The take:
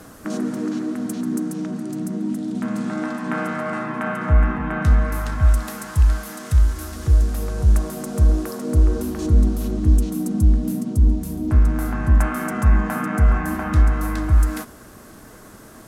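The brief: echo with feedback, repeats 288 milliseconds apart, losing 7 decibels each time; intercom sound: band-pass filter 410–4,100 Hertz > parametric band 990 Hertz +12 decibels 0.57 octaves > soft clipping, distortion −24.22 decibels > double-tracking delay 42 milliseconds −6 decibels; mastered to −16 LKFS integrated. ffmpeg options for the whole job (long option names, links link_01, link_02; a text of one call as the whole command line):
ffmpeg -i in.wav -filter_complex "[0:a]highpass=410,lowpass=4100,equalizer=frequency=990:width_type=o:width=0.57:gain=12,aecho=1:1:288|576|864|1152|1440:0.447|0.201|0.0905|0.0407|0.0183,asoftclip=threshold=-11.5dB,asplit=2[link_01][link_02];[link_02]adelay=42,volume=-6dB[link_03];[link_01][link_03]amix=inputs=2:normalize=0,volume=10dB" out.wav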